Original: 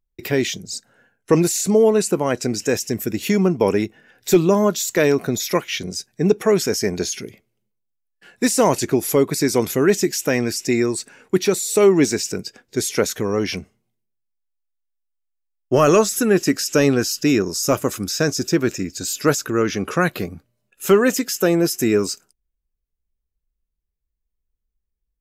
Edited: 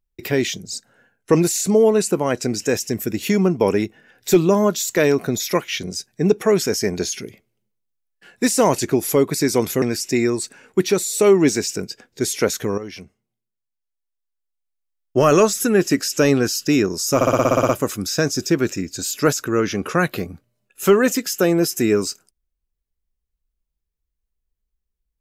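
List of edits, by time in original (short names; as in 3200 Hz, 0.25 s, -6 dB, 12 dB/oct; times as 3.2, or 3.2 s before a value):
9.82–10.38 cut
13.34–15.74 fade in, from -12.5 dB
17.71 stutter 0.06 s, 10 plays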